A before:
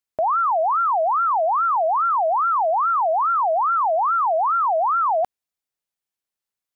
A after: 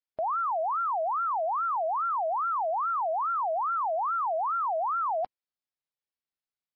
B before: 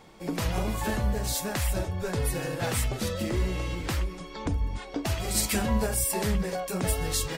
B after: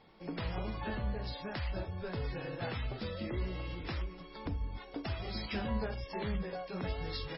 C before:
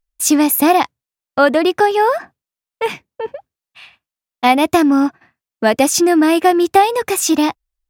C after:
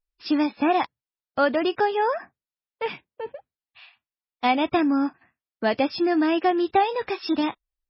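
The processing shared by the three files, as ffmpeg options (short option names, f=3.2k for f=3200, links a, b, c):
-af "volume=-8.5dB" -ar 16000 -c:a libmp3lame -b:a 16k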